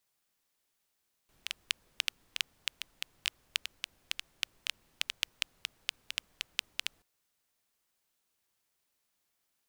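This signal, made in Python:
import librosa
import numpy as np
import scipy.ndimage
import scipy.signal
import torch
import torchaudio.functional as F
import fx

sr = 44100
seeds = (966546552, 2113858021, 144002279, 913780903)

y = fx.rain(sr, seeds[0], length_s=5.73, drops_per_s=5.5, hz=2900.0, bed_db=-28)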